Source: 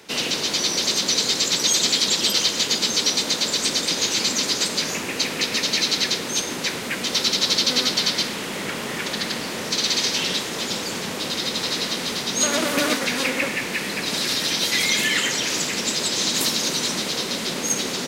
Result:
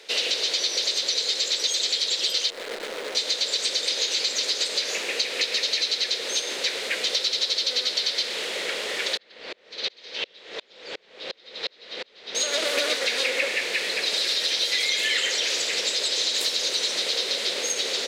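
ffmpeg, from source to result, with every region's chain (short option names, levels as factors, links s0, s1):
-filter_complex "[0:a]asettb=1/sr,asplit=3[s0][s1][s2];[s0]atrim=end=2.504[s3];[s1]atrim=start=2.5:end=3.15,asetpts=PTS-STARTPTS,afade=t=in:d=0.004:c=qsin,afade=t=out:st=0.646:d=0.004:c=qsin,lowpass=f=1700:w=0.5412,lowpass=f=1700:w=1.3066,acrusher=bits=6:dc=4:mix=0:aa=0.000001[s4];[s2]atrim=start=3.146[s5];[s3][s4]acrossfade=d=0.004:c1=hsin:c2=qsin[s6];[s6][s5]acrossfade=d=0.004:c1=qsin:c2=hsin,asettb=1/sr,asplit=3[s7][s8][s9];[s7]atrim=end=9.174[s10];[s8]atrim=start=9.17:end=12.35,asetpts=PTS-STARTPTS,afade=t=in:d=0.004:c=qsin,afade=t=out:st=3.176:d=0.004:c=qsin,lowpass=3300,lowshelf=f=120:g=10,aeval=exprs='val(0)*pow(10,-36*if(lt(mod(-2.8*n/s,1),2*abs(-2.8)/1000),1-mod(-2.8*n/s,1)/(2*abs(-2.8)/1000),(mod(-2.8*n/s,1)-2*abs(-2.8)/1000)/(1-2*abs(-2.8)/1000))/20)':c=same[s11];[s9]atrim=start=12.346[s12];[s10][s11]acrossfade=d=0.004:c1=hsin:c2=qsin[s13];[s13][s12]acrossfade=d=0.004:c1=qsin:c2=hsin,equalizer=f=125:t=o:w=1:g=-8,equalizer=f=250:t=o:w=1:g=-6,equalizer=f=500:t=o:w=1:g=10,equalizer=f=1000:t=o:w=1:g=-5,equalizer=f=2000:t=o:w=1:g=4,equalizer=f=4000:t=o:w=1:g=11,equalizer=f=8000:t=o:w=1:g=6,acompressor=threshold=0.224:ratio=6,bass=f=250:g=-13,treble=f=4000:g=-6,volume=0.562"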